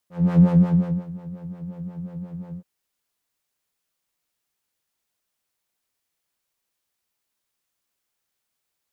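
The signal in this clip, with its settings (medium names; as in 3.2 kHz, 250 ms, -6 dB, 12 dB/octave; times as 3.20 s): synth patch with filter wobble F3, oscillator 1 triangle, interval 0 st, oscillator 2 level -17.5 dB, sub -18.5 dB, noise -29 dB, filter bandpass, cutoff 220 Hz, Q 0.93, filter envelope 1 oct, filter decay 1.09 s, attack 265 ms, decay 0.70 s, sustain -20.5 dB, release 0.07 s, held 2.46 s, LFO 5.6 Hz, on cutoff 1.4 oct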